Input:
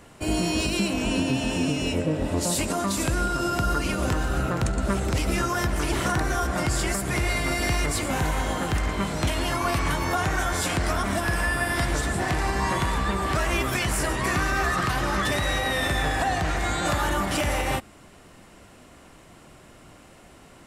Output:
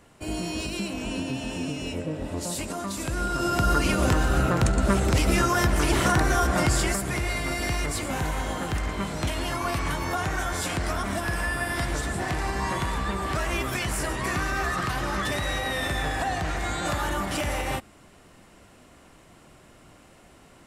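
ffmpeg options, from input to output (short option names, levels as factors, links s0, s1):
-af "volume=1.41,afade=t=in:st=3.04:d=0.74:silence=0.354813,afade=t=out:st=6.63:d=0.55:silence=0.501187"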